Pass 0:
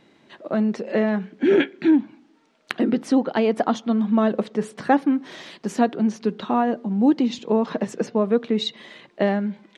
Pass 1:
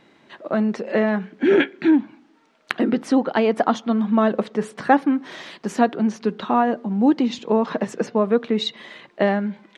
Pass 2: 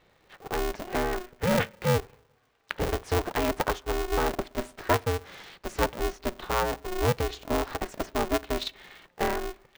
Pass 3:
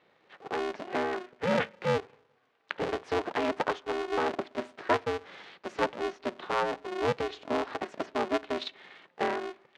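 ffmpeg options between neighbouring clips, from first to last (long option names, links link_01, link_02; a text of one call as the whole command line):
ffmpeg -i in.wav -af "equalizer=frequency=1300:width_type=o:width=2.1:gain=4.5" out.wav
ffmpeg -i in.wav -af "aeval=exprs='val(0)*sgn(sin(2*PI*180*n/s))':channel_layout=same,volume=-8.5dB" out.wav
ffmpeg -i in.wav -af "highpass=200,lowpass=3900,volume=-1.5dB" out.wav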